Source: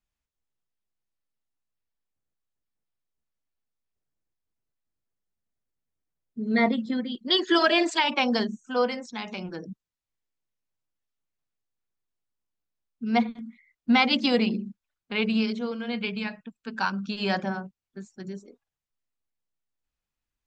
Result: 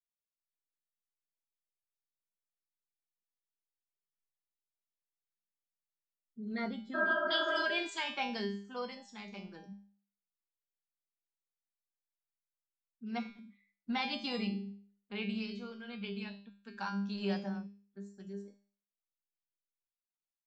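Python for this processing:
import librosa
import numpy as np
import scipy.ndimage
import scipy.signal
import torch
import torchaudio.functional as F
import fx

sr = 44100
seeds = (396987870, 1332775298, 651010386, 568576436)

y = fx.noise_reduce_blind(x, sr, reduce_db=15)
y = fx.spec_repair(y, sr, seeds[0], start_s=6.97, length_s=0.63, low_hz=280.0, high_hz=1700.0, source='after')
y = fx.comb_fb(y, sr, f0_hz=200.0, decay_s=0.47, harmonics='all', damping=0.0, mix_pct=90)
y = y * 10.0 ** (1.0 / 20.0)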